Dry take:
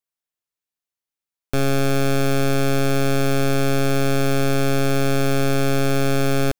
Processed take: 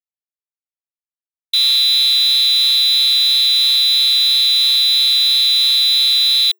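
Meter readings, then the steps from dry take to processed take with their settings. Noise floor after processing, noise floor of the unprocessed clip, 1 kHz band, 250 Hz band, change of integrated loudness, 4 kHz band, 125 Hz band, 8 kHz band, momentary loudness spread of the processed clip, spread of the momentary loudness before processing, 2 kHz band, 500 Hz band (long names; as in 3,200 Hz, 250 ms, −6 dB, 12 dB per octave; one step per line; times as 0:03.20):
below −85 dBFS, below −85 dBFS, below −15 dB, below −40 dB, +11.0 dB, +24.0 dB, below −40 dB, +5.0 dB, 0 LU, 0 LU, −2.0 dB, below −30 dB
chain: variable-slope delta modulation 64 kbit/s
voice inversion scrambler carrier 3,600 Hz
log-companded quantiser 4 bits
frequency shifter +380 Hz
high-pass filter 1,200 Hz 6 dB per octave
level +2.5 dB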